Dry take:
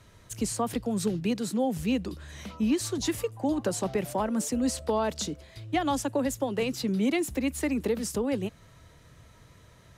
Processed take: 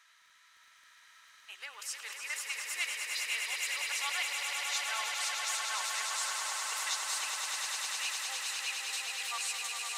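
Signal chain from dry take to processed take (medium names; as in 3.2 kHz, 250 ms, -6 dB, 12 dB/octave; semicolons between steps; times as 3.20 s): reverse the whole clip; high-pass 1.3 kHz 24 dB/octave; treble shelf 8.6 kHz -9 dB; crackle 13 per s -52 dBFS; on a send: echo with a slow build-up 102 ms, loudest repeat 8, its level -6 dB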